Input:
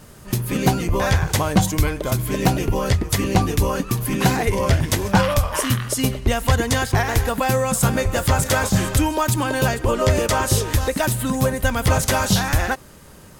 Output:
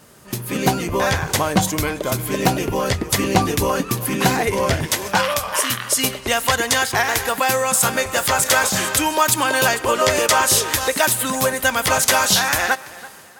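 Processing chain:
high-pass filter 250 Hz 6 dB per octave, from 0:04.87 970 Hz
automatic gain control
tape delay 332 ms, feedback 35%, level −18 dB, low-pass 3,900 Hz
level −1 dB

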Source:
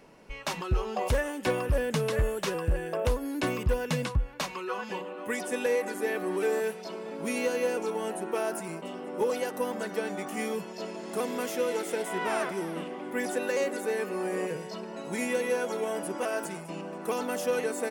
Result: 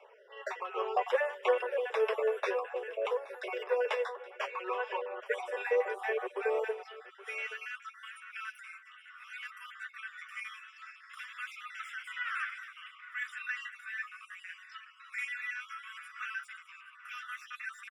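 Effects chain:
time-frequency cells dropped at random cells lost 27%
Butterworth high-pass 400 Hz 96 dB per octave, from 0:06.83 1,200 Hz
flanger 0.61 Hz, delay 3 ms, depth 7.9 ms, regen +36%
Savitzky-Golay smoothing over 25 samples
single-tap delay 823 ms −18.5 dB
amplitude modulation by smooth noise, depth 50%
level +7.5 dB

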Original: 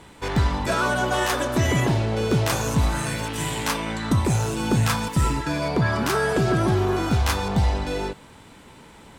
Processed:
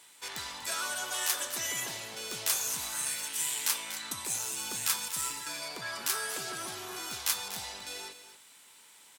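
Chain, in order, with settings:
first difference
on a send: single-tap delay 241 ms −12 dB
on the sum: level +1.5 dB

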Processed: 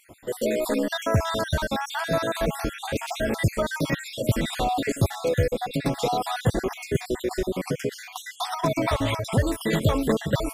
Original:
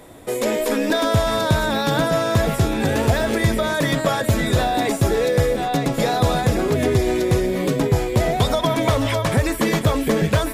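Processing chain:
time-frequency cells dropped at random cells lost 50%
level −3 dB

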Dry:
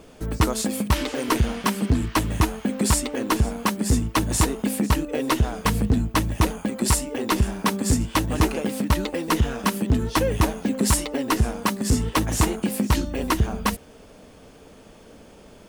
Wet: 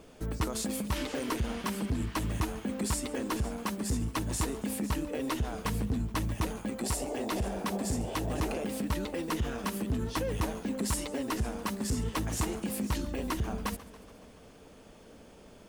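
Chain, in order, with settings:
0:06.82–0:08.63: noise in a band 330–780 Hz −33 dBFS
brickwall limiter −18.5 dBFS, peak gain reduction 8 dB
feedback echo with a swinging delay time 141 ms, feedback 63%, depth 165 cents, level −18 dB
level −6 dB

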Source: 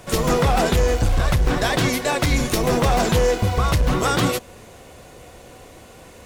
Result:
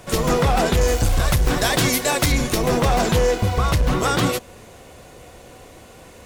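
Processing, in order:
0:00.81–0:02.32: high-shelf EQ 5,700 Hz +10.5 dB

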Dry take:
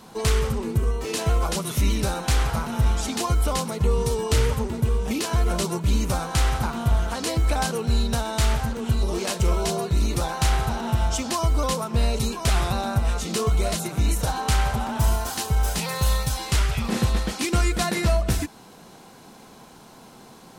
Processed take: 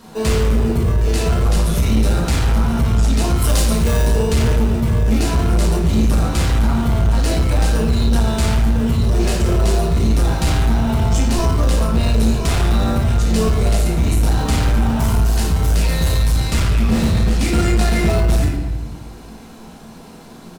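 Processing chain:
far-end echo of a speakerphone 240 ms, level −17 dB
in parallel at −5.5 dB: decimation without filtering 41×
0:03.37–0:04.05: on the sum: high-shelf EQ 2,800 Hz +9.5 dB
rectangular room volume 290 cubic metres, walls mixed, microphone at 1.7 metres
soft clipping −8.5 dBFS, distortion −16 dB

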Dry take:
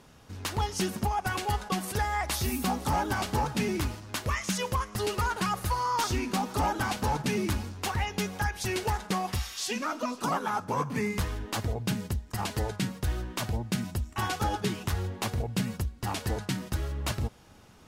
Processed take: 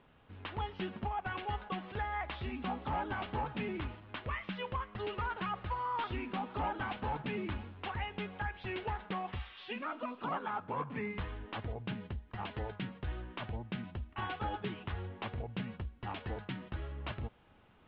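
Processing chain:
Butterworth low-pass 3,400 Hz 48 dB per octave
parametric band 120 Hz −3 dB 3 octaves
level −7 dB

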